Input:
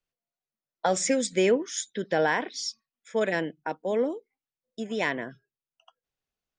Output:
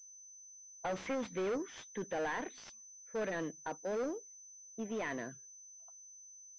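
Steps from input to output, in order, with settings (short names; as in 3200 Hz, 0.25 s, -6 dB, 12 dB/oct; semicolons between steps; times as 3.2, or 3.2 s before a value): soft clip -27.5 dBFS, distortion -7 dB; low-pass opened by the level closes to 650 Hz, open at -32 dBFS; pulse-width modulation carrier 6100 Hz; gain -5 dB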